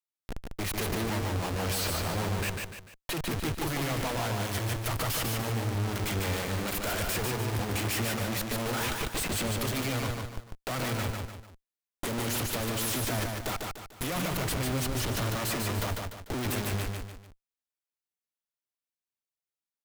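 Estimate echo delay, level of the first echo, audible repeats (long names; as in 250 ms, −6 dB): 148 ms, −3.5 dB, 3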